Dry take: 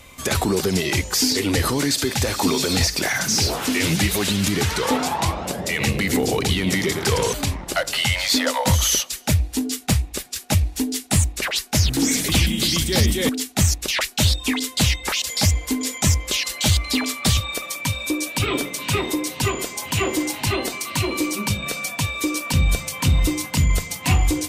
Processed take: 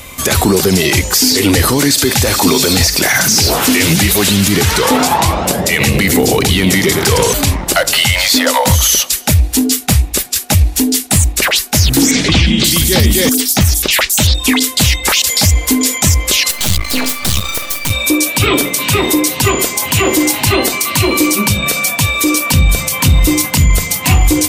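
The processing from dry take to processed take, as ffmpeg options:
ffmpeg -i in.wav -filter_complex "[0:a]asettb=1/sr,asplit=3[link_01][link_02][link_03];[link_01]atrim=end=12.114[link_04];[link_02]atrim=start=12.11:end=14.35,asetpts=PTS-STARTPTS,afade=type=in:duration=0.004:curve=qsin,afade=type=out:start_time=2.236:duration=0.004:curve=qsin,acrossover=split=5700[link_05][link_06];[link_06]adelay=530[link_07];[link_05][link_07]amix=inputs=2:normalize=0,atrim=end_sample=98784[link_08];[link_03]atrim=start=14.346[link_09];[link_04][link_08]acrossfade=duration=0.004:curve1=hsin:curve2=qsin[link_10];[link_10][link_09]acrossfade=duration=0.004:curve1=qsin:curve2=hsin,asettb=1/sr,asplit=3[link_11][link_12][link_13];[link_11]atrim=end=16.514[link_14];[link_12]atrim=start=16.51:end=17.91,asetpts=PTS-STARTPTS,afade=type=in:duration=0.004:curve=qsin,afade=type=out:start_time=1.396:duration=0.004:curve=qsin,aeval=exprs='max(val(0),0)':channel_layout=same[link_15];[link_13]atrim=start=17.906[link_16];[link_14][link_15]acrossfade=duration=0.004:curve1=hsin:curve2=qsin[link_17];[link_17][link_16]acrossfade=duration=0.004:curve1=qsin:curve2=hsin,highshelf=frequency=12000:gain=11.5,alimiter=level_in=13.5dB:limit=-1dB:release=50:level=0:latency=1,volume=-1dB" out.wav

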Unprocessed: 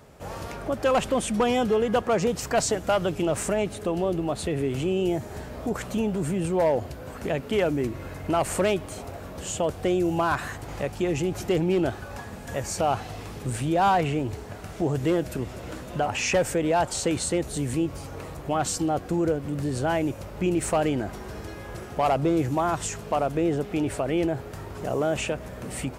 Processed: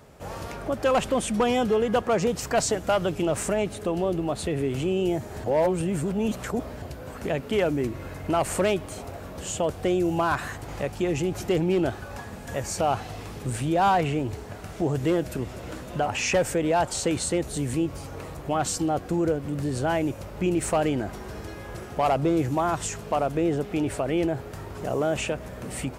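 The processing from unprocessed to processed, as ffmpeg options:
ffmpeg -i in.wav -filter_complex "[0:a]asplit=3[link_01][link_02][link_03];[link_01]atrim=end=5.442[link_04];[link_02]atrim=start=5.438:end=6.822,asetpts=PTS-STARTPTS,areverse[link_05];[link_03]atrim=start=6.818[link_06];[link_04][link_05]acrossfade=duration=0.004:curve1=hsin:curve2=hsin[link_07];[link_07][link_06]acrossfade=duration=0.004:curve1=hsin:curve2=hsin" out.wav

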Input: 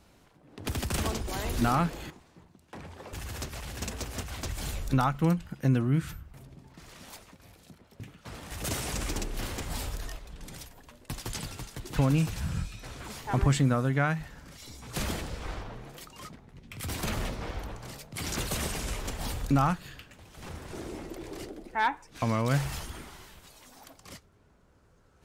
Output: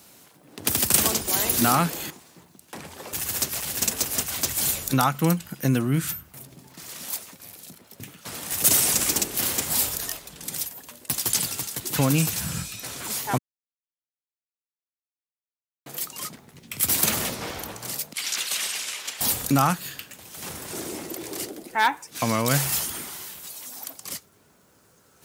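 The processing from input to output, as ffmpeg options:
ffmpeg -i in.wav -filter_complex "[0:a]asettb=1/sr,asplit=3[link_01][link_02][link_03];[link_01]atrim=end=18.134[link_04];[link_02]atrim=start=18.13:end=19.21,asetpts=PTS-STARTPTS,afade=type=in:duration=0.004:curve=qsin,afade=type=out:start_time=1.076:duration=0.004:curve=qsin,bandpass=frequency=2800:width_type=q:width=0.9[link_05];[link_03]atrim=start=19.206[link_06];[link_04][link_05]acrossfade=duration=0.004:curve1=hsin:curve2=qsin[link_07];[link_07][link_06]acrossfade=duration=0.004:curve1=qsin:curve2=hsin,asplit=3[link_08][link_09][link_10];[link_08]atrim=end=13.38,asetpts=PTS-STARTPTS,afade=type=out:start_time=13.376:duration=0.004:curve=hsin[link_11];[link_09]atrim=start=13.38:end=15.86,asetpts=PTS-STARTPTS,volume=0[link_12];[link_10]atrim=start=15.86,asetpts=PTS-STARTPTS,afade=type=in:duration=0.004:curve=hsin[link_13];[link_11][link_12][link_13]concat=n=3:v=0:a=1,highpass=140,aemphasis=mode=production:type=75fm,volume=5.5dB" out.wav

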